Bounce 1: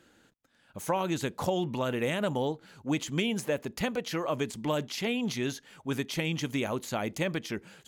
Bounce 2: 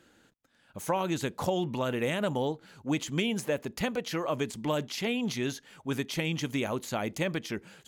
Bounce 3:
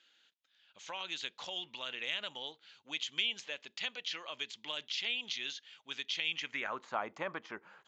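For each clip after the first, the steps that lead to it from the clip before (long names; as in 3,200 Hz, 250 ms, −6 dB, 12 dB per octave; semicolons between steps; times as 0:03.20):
no processing that can be heard
downsampling to 16,000 Hz; band-pass filter sweep 3,300 Hz → 1,100 Hz, 0:06.25–0:06.86; level +4 dB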